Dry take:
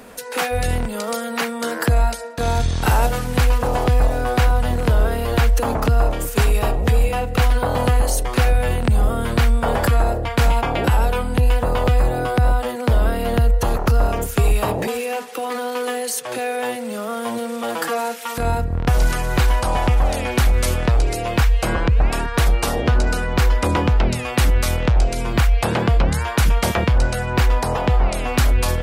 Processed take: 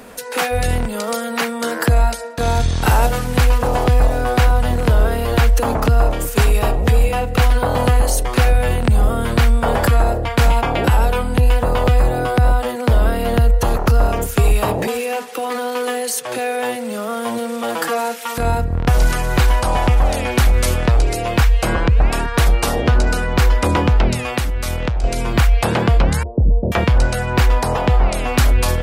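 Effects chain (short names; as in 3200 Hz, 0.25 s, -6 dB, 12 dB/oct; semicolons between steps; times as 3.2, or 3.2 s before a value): 24.27–25.04 compressor 10:1, threshold -19 dBFS, peak gain reduction 8.5 dB; 26.23–26.72 steep low-pass 590 Hz 36 dB/oct; gain +2.5 dB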